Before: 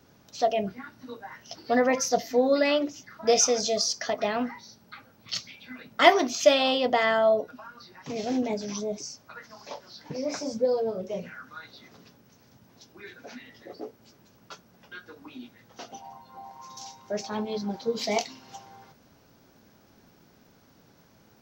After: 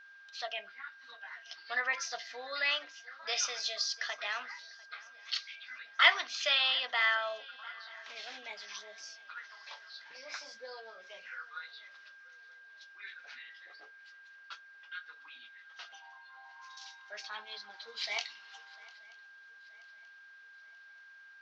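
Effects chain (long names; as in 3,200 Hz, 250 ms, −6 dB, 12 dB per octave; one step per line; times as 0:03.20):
Chebyshev band-pass filter 1,400–4,000 Hz, order 2
steady tone 1,600 Hz −53 dBFS
feedback echo with a long and a short gap by turns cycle 931 ms, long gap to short 3 to 1, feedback 43%, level −23 dB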